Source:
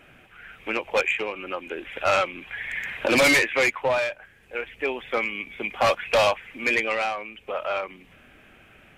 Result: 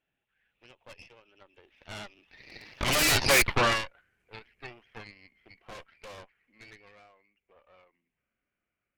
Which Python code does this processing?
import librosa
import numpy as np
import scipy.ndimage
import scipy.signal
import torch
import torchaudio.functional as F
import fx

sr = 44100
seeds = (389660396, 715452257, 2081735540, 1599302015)

y = fx.doppler_pass(x, sr, speed_mps=27, closest_m=4.0, pass_at_s=3.41)
y = fx.cheby_harmonics(y, sr, harmonics=(3, 8), levels_db=(-18, -6), full_scale_db=-14.5)